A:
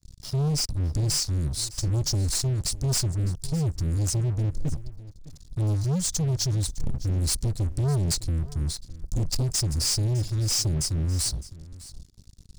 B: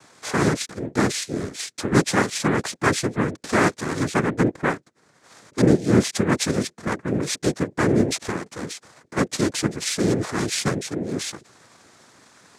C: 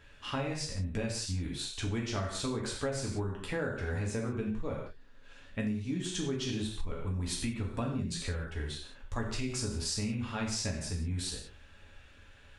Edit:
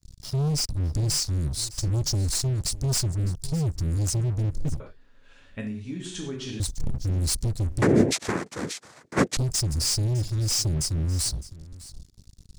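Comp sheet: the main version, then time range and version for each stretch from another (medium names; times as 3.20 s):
A
4.80–6.60 s: from C
7.82–9.37 s: from B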